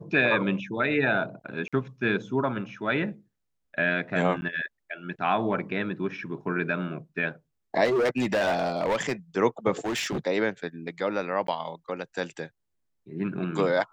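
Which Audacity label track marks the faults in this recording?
1.680000	1.730000	drop-out 46 ms
4.410000	4.420000	drop-out 10 ms
7.840000	9.120000	clipping −21 dBFS
9.790000	10.180000	clipping −25.5 dBFS
11.470000	11.480000	drop-out 13 ms

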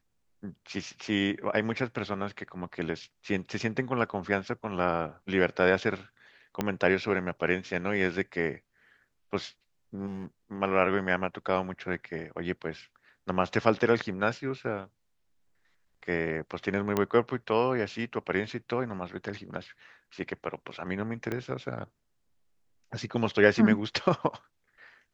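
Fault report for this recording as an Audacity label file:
6.610000	6.610000	click −13 dBFS
10.060000	10.260000	clipping −33.5 dBFS
16.970000	16.970000	click −13 dBFS
21.320000	21.320000	click −19 dBFS

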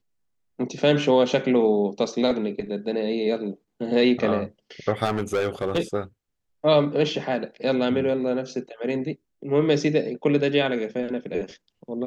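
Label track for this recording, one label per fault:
5.040000	5.790000	clipping −19 dBFS

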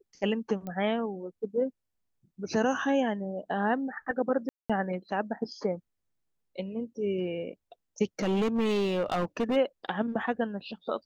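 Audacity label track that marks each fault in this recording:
0.670000	0.670000	click −25 dBFS
4.490000	4.700000	drop-out 206 ms
8.190000	9.570000	clipping −23.5 dBFS

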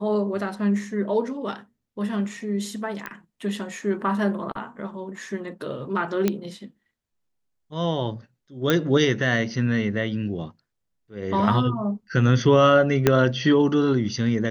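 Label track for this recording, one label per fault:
3.060000	3.060000	click −18 dBFS
6.280000	6.280000	click −8 dBFS
8.700000	8.700000	click −7 dBFS
13.070000	13.070000	click −3 dBFS

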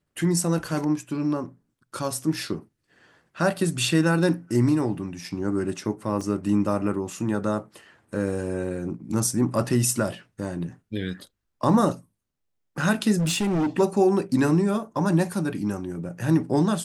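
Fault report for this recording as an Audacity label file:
6.210000	6.210000	drop-out 2.1 ms
13.180000	13.690000	clipping −20.5 dBFS

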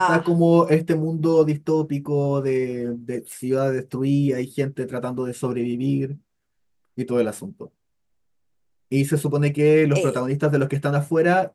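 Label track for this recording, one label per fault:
3.320000	3.320000	click −24 dBFS

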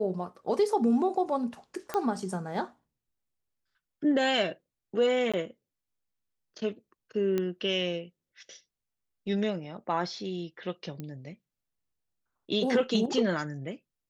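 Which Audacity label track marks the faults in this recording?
1.940000	1.940000	click −17 dBFS
5.320000	5.340000	drop-out 16 ms
7.380000	7.380000	click −17 dBFS
11.000000	11.000000	click −25 dBFS

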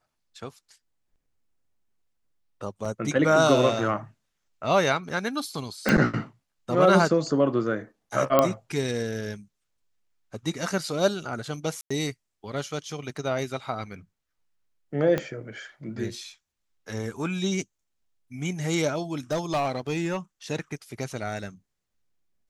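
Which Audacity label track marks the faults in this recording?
2.850000	2.850000	drop-out 4.3 ms
5.890000	5.890000	click −7 dBFS
8.390000	8.390000	click −6 dBFS
11.810000	11.900000	drop-out 95 ms
15.180000	15.180000	click −13 dBFS
19.310000	20.170000	clipping −21.5 dBFS

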